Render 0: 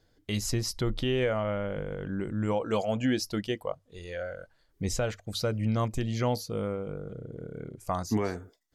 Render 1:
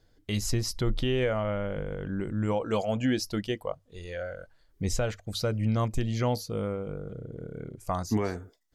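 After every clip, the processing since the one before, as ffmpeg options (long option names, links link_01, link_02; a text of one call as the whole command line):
ffmpeg -i in.wav -af "lowshelf=frequency=64:gain=7" out.wav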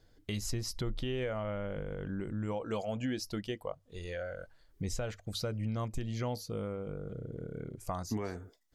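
ffmpeg -i in.wav -af "acompressor=threshold=-38dB:ratio=2" out.wav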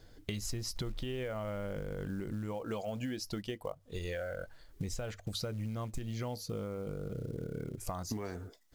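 ffmpeg -i in.wav -af "acrusher=bits=7:mode=log:mix=0:aa=0.000001,acompressor=threshold=-43dB:ratio=5,volume=7.5dB" out.wav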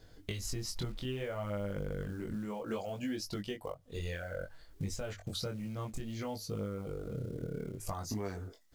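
ffmpeg -i in.wav -af "flanger=delay=19.5:depth=4.7:speed=0.62,volume=3dB" out.wav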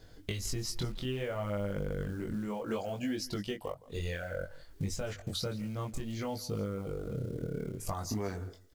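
ffmpeg -i in.wav -af "aecho=1:1:165:0.1,volume=2.5dB" out.wav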